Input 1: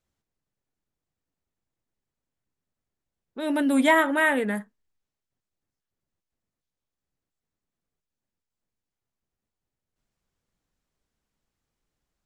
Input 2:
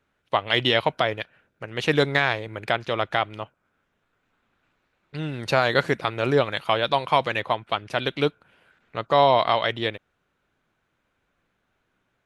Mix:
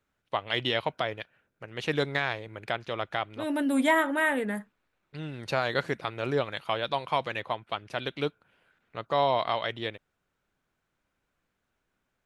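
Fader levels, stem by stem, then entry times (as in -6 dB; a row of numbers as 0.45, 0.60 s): -4.0, -7.5 dB; 0.00, 0.00 s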